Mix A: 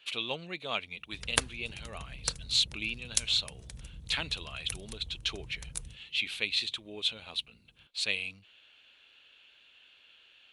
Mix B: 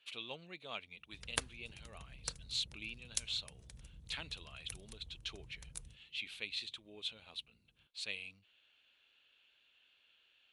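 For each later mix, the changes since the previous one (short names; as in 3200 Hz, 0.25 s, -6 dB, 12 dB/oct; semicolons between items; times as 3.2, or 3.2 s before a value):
speech -11.0 dB; background -9.0 dB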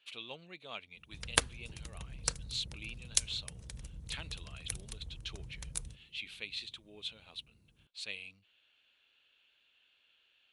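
background +8.5 dB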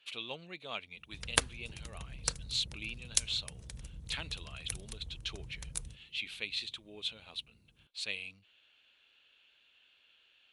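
speech +4.0 dB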